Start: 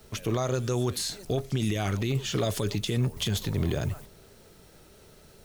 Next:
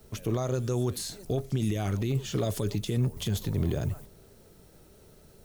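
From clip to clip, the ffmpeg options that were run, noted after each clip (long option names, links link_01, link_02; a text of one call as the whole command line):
ffmpeg -i in.wav -af "equalizer=frequency=2600:width=0.33:gain=-7" out.wav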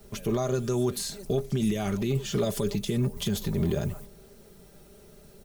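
ffmpeg -i in.wav -af "aecho=1:1:5:0.57,volume=1.5dB" out.wav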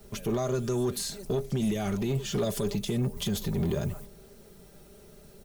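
ffmpeg -i in.wav -af "asoftclip=type=tanh:threshold=-20dB" out.wav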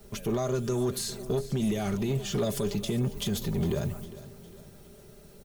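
ffmpeg -i in.wav -af "aecho=1:1:406|812|1218|1624:0.15|0.0703|0.0331|0.0155" out.wav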